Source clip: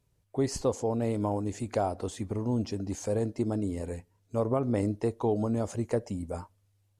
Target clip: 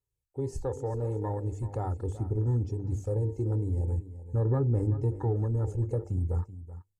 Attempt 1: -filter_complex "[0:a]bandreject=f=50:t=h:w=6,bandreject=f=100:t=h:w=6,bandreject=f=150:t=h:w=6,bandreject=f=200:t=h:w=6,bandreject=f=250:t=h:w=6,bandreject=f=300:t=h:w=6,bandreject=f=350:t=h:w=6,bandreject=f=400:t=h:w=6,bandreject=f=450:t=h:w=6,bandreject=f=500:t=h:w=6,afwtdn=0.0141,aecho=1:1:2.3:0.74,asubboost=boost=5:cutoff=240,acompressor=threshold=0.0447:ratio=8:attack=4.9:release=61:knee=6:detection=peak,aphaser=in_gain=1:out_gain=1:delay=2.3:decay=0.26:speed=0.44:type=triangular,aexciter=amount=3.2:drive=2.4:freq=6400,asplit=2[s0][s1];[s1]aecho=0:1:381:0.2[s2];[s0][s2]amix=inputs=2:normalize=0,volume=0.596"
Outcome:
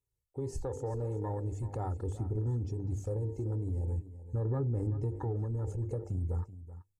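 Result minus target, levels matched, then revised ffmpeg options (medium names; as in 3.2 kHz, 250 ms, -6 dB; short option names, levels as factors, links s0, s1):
compression: peak gain reduction +7 dB
-filter_complex "[0:a]bandreject=f=50:t=h:w=6,bandreject=f=100:t=h:w=6,bandreject=f=150:t=h:w=6,bandreject=f=200:t=h:w=6,bandreject=f=250:t=h:w=6,bandreject=f=300:t=h:w=6,bandreject=f=350:t=h:w=6,bandreject=f=400:t=h:w=6,bandreject=f=450:t=h:w=6,bandreject=f=500:t=h:w=6,afwtdn=0.0141,aecho=1:1:2.3:0.74,asubboost=boost=5:cutoff=240,acompressor=threshold=0.119:ratio=8:attack=4.9:release=61:knee=6:detection=peak,aphaser=in_gain=1:out_gain=1:delay=2.3:decay=0.26:speed=0.44:type=triangular,aexciter=amount=3.2:drive=2.4:freq=6400,asplit=2[s0][s1];[s1]aecho=0:1:381:0.2[s2];[s0][s2]amix=inputs=2:normalize=0,volume=0.596"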